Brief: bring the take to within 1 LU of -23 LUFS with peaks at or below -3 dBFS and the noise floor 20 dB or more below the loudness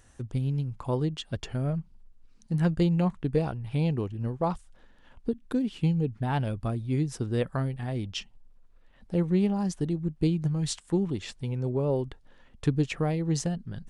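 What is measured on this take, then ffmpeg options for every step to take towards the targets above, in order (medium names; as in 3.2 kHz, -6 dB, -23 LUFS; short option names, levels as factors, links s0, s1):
loudness -29.5 LUFS; peak level -13.5 dBFS; loudness target -23.0 LUFS
-> -af "volume=2.11"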